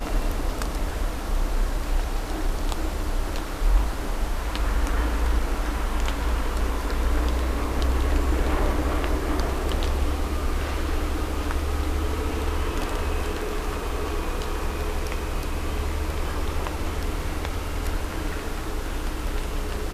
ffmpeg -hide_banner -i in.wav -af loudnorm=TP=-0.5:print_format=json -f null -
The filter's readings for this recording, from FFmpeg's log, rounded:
"input_i" : "-28.5",
"input_tp" : "-9.0",
"input_lra" : "4.6",
"input_thresh" : "-38.5",